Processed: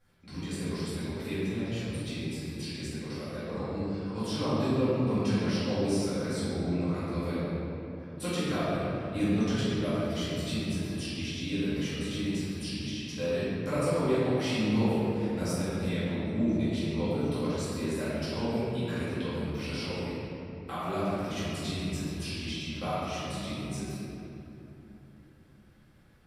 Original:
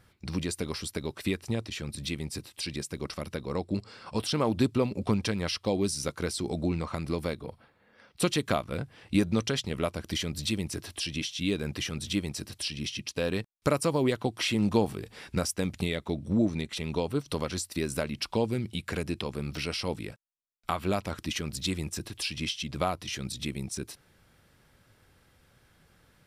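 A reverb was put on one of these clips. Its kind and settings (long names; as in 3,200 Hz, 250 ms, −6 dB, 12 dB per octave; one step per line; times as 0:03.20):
rectangular room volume 150 cubic metres, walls hard, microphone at 2.2 metres
level −16 dB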